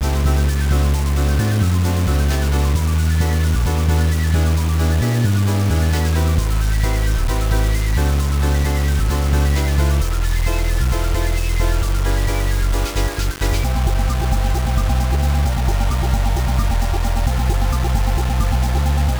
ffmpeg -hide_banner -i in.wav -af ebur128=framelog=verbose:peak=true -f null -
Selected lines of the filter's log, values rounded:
Integrated loudness:
  I:         -18.5 LUFS
  Threshold: -28.5 LUFS
Loudness range:
  LRA:         2.5 LU
  Threshold: -38.6 LUFS
  LRA low:   -19.9 LUFS
  LRA high:  -17.4 LUFS
True peak:
  Peak:       -5.3 dBFS